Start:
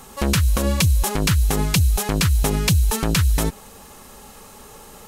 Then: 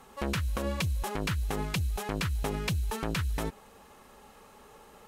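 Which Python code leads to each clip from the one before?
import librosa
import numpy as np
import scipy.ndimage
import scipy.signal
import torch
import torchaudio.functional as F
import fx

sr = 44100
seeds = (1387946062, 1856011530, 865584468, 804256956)

y = fx.cheby_harmonics(x, sr, harmonics=(6,), levels_db=(-34,), full_scale_db=-7.0)
y = fx.bass_treble(y, sr, bass_db=-5, treble_db=-10)
y = F.gain(torch.from_numpy(y), -8.5).numpy()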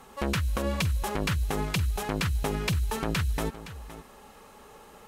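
y = x + 10.0 ** (-14.5 / 20.0) * np.pad(x, (int(516 * sr / 1000.0), 0))[:len(x)]
y = F.gain(torch.from_numpy(y), 3.0).numpy()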